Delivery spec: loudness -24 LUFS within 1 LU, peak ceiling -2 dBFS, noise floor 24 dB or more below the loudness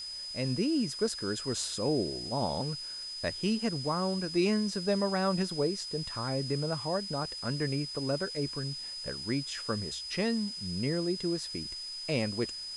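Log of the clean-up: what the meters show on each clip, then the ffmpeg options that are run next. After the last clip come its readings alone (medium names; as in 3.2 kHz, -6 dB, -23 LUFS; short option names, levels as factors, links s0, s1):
steady tone 5 kHz; tone level -38 dBFS; noise floor -41 dBFS; noise floor target -56 dBFS; loudness -32.0 LUFS; peak level -16.5 dBFS; loudness target -24.0 LUFS
-> -af "bandreject=f=5000:w=30"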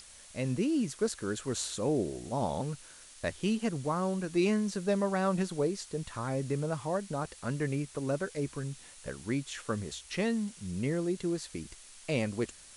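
steady tone not found; noise floor -53 dBFS; noise floor target -57 dBFS
-> -af "afftdn=nr=6:nf=-53"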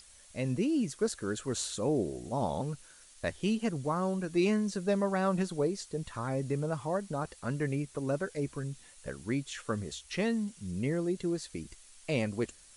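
noise floor -57 dBFS; loudness -33.0 LUFS; peak level -17.0 dBFS; loudness target -24.0 LUFS
-> -af "volume=2.82"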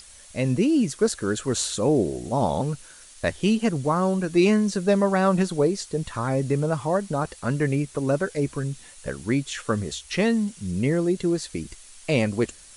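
loudness -24.0 LUFS; peak level -8.0 dBFS; noise floor -48 dBFS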